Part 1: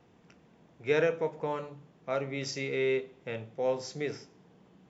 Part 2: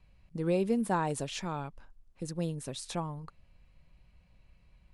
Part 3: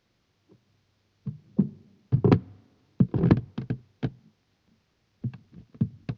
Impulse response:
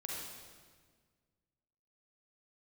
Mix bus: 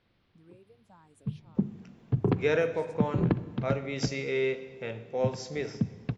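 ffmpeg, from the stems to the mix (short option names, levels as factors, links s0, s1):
-filter_complex "[0:a]adelay=1550,volume=0.891,asplit=2[s0][s1];[s1]volume=0.299[s2];[1:a]acompressor=threshold=0.0158:ratio=2.5,asplit=2[s3][s4];[s4]afreqshift=1.6[s5];[s3][s5]amix=inputs=2:normalize=1,volume=0.112[s6];[2:a]lowpass=f=4000:w=0.5412,lowpass=f=4000:w=1.3066,volume=1.06,asplit=2[s7][s8];[s8]volume=0.0944[s9];[s6][s7]amix=inputs=2:normalize=0,acompressor=threshold=0.0708:ratio=6,volume=1[s10];[3:a]atrim=start_sample=2205[s11];[s2][s9]amix=inputs=2:normalize=0[s12];[s12][s11]afir=irnorm=-1:irlink=0[s13];[s0][s10][s13]amix=inputs=3:normalize=0"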